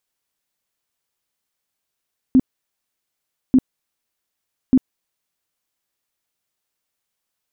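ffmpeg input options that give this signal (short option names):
-f lavfi -i "aevalsrc='0.398*sin(2*PI*259*mod(t,1.19))*lt(mod(t,1.19),12/259)':d=3.57:s=44100"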